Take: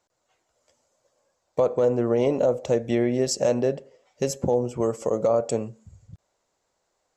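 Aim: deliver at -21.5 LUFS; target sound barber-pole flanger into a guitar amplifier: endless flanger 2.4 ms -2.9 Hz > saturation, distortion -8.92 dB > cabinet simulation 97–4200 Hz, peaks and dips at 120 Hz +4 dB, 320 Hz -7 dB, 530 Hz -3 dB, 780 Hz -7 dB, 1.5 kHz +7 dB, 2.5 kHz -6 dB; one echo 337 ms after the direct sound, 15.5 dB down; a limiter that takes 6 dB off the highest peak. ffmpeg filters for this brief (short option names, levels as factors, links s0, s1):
-filter_complex "[0:a]alimiter=limit=0.126:level=0:latency=1,aecho=1:1:337:0.168,asplit=2[s0][s1];[s1]adelay=2.4,afreqshift=-2.9[s2];[s0][s2]amix=inputs=2:normalize=1,asoftclip=threshold=0.0251,highpass=97,equalizer=f=120:t=q:w=4:g=4,equalizer=f=320:t=q:w=4:g=-7,equalizer=f=530:t=q:w=4:g=-3,equalizer=f=780:t=q:w=4:g=-7,equalizer=f=1500:t=q:w=4:g=7,equalizer=f=2500:t=q:w=4:g=-6,lowpass=f=4200:w=0.5412,lowpass=f=4200:w=1.3066,volume=7.94"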